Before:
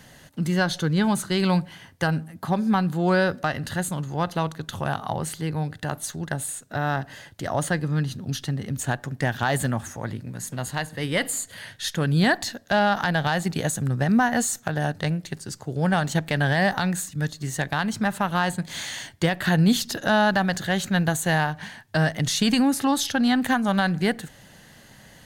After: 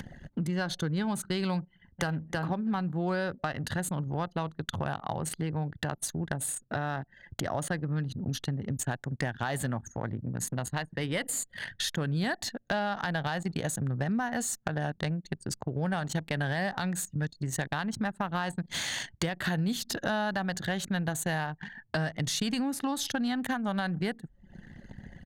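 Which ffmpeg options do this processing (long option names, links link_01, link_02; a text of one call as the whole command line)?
ffmpeg -i in.wav -filter_complex "[0:a]asplit=2[link_01][link_02];[link_02]afade=type=in:start_time=1.66:duration=0.01,afade=type=out:start_time=2.21:duration=0.01,aecho=0:1:320|640:0.668344|0.0668344[link_03];[link_01][link_03]amix=inputs=2:normalize=0,acompressor=mode=upward:threshold=-26dB:ratio=2.5,anlmdn=15.8,acompressor=threshold=-29dB:ratio=4" out.wav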